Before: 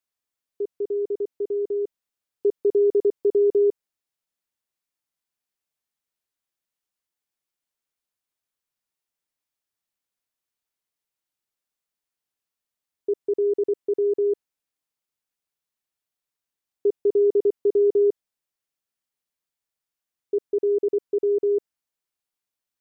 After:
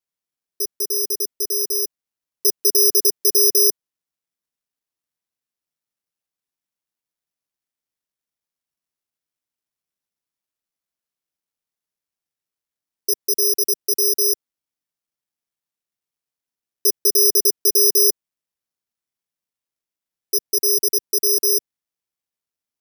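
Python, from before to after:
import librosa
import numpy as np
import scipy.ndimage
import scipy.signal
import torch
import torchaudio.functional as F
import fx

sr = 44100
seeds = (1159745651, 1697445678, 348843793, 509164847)

y = fx.peak_eq(x, sr, hz=190.0, db=11.5, octaves=2.5)
y = (np.kron(y[::8], np.eye(8)[0]) * 8)[:len(y)]
y = y * librosa.db_to_amplitude(-12.0)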